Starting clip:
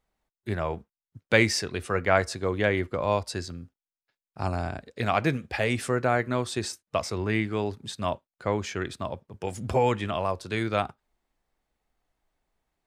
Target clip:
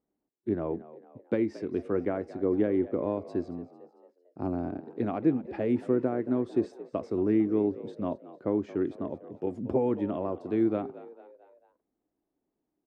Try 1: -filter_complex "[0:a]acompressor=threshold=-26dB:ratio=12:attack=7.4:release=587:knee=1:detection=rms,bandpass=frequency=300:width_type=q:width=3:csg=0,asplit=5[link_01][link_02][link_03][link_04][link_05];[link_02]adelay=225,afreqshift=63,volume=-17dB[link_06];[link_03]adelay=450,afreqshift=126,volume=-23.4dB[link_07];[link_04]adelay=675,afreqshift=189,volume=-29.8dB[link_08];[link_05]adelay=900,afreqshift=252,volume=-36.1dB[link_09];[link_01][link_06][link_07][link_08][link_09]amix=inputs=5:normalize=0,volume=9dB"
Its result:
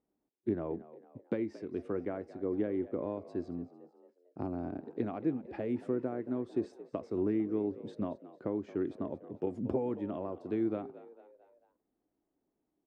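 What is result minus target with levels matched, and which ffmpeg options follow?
downward compressor: peak gain reduction +7.5 dB
-filter_complex "[0:a]acompressor=threshold=-18dB:ratio=12:attack=7.4:release=587:knee=1:detection=rms,bandpass=frequency=300:width_type=q:width=3:csg=0,asplit=5[link_01][link_02][link_03][link_04][link_05];[link_02]adelay=225,afreqshift=63,volume=-17dB[link_06];[link_03]adelay=450,afreqshift=126,volume=-23.4dB[link_07];[link_04]adelay=675,afreqshift=189,volume=-29.8dB[link_08];[link_05]adelay=900,afreqshift=252,volume=-36.1dB[link_09];[link_01][link_06][link_07][link_08][link_09]amix=inputs=5:normalize=0,volume=9dB"

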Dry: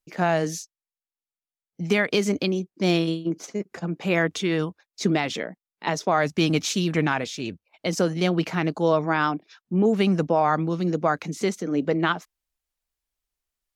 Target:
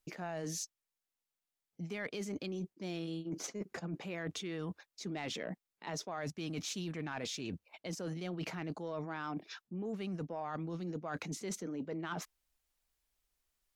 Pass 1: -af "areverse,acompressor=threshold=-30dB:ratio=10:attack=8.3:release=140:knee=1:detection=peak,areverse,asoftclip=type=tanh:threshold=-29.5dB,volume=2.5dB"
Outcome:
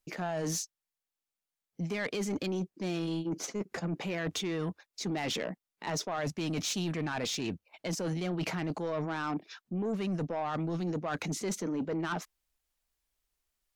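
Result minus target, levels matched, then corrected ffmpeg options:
downward compressor: peak gain reduction −9 dB
-af "areverse,acompressor=threshold=-40dB:ratio=10:attack=8.3:release=140:knee=1:detection=peak,areverse,asoftclip=type=tanh:threshold=-29.5dB,volume=2.5dB"

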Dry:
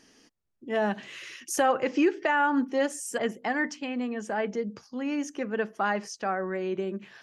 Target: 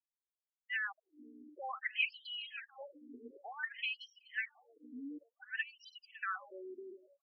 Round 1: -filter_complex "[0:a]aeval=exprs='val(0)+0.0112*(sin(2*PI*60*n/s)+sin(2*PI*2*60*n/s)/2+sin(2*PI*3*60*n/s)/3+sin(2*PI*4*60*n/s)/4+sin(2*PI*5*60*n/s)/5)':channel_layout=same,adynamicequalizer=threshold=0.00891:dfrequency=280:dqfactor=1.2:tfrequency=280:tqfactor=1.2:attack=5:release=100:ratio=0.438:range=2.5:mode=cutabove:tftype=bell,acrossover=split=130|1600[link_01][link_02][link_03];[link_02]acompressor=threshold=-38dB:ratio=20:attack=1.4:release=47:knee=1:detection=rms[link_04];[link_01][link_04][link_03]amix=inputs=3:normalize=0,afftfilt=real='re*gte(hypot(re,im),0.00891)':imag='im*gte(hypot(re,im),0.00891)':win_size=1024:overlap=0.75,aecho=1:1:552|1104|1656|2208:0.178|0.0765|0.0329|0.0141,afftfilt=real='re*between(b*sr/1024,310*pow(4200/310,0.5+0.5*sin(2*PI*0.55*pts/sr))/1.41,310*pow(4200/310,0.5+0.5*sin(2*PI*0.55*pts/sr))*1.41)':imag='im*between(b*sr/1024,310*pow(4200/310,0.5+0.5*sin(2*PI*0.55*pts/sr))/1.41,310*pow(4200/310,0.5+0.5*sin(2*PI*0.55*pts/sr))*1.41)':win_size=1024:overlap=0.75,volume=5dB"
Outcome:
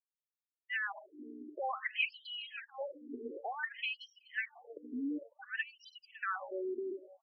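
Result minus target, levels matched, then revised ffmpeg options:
downward compressor: peak gain reduction −11 dB
-filter_complex "[0:a]aeval=exprs='val(0)+0.0112*(sin(2*PI*60*n/s)+sin(2*PI*2*60*n/s)/2+sin(2*PI*3*60*n/s)/3+sin(2*PI*4*60*n/s)/4+sin(2*PI*5*60*n/s)/5)':channel_layout=same,adynamicequalizer=threshold=0.00891:dfrequency=280:dqfactor=1.2:tfrequency=280:tqfactor=1.2:attack=5:release=100:ratio=0.438:range=2.5:mode=cutabove:tftype=bell,acrossover=split=130|1600[link_01][link_02][link_03];[link_02]acompressor=threshold=-49.5dB:ratio=20:attack=1.4:release=47:knee=1:detection=rms[link_04];[link_01][link_04][link_03]amix=inputs=3:normalize=0,afftfilt=real='re*gte(hypot(re,im),0.00891)':imag='im*gte(hypot(re,im),0.00891)':win_size=1024:overlap=0.75,aecho=1:1:552|1104|1656|2208:0.178|0.0765|0.0329|0.0141,afftfilt=real='re*between(b*sr/1024,310*pow(4200/310,0.5+0.5*sin(2*PI*0.55*pts/sr))/1.41,310*pow(4200/310,0.5+0.5*sin(2*PI*0.55*pts/sr))*1.41)':imag='im*between(b*sr/1024,310*pow(4200/310,0.5+0.5*sin(2*PI*0.55*pts/sr))/1.41,310*pow(4200/310,0.5+0.5*sin(2*PI*0.55*pts/sr))*1.41)':win_size=1024:overlap=0.75,volume=5dB"

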